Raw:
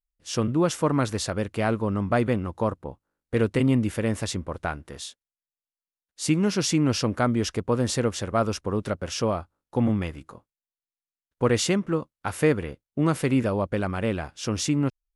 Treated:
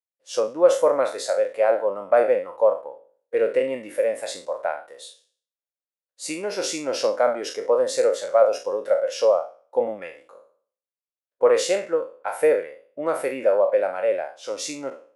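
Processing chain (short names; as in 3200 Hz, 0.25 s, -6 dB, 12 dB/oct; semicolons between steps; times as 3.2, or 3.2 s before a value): spectral trails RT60 0.49 s; resonant high-pass 540 Hz, resonance Q 6.1; spectral noise reduction 8 dB; gain -3.5 dB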